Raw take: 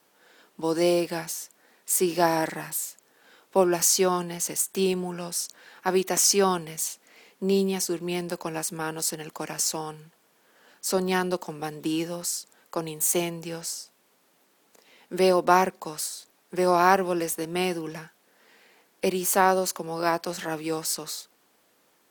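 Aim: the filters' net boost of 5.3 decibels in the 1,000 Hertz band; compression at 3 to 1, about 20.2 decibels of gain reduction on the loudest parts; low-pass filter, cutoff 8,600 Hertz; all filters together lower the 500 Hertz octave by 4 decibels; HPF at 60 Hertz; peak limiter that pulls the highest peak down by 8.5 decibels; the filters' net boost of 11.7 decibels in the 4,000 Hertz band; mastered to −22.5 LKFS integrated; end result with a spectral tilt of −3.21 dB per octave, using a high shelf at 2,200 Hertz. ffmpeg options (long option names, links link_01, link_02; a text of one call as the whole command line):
ffmpeg -i in.wav -af "highpass=60,lowpass=8600,equalizer=frequency=500:width_type=o:gain=-8.5,equalizer=frequency=1000:width_type=o:gain=7.5,highshelf=frequency=2200:gain=8,equalizer=frequency=4000:width_type=o:gain=7.5,acompressor=threshold=-37dB:ratio=3,volume=15dB,alimiter=limit=-10dB:level=0:latency=1" out.wav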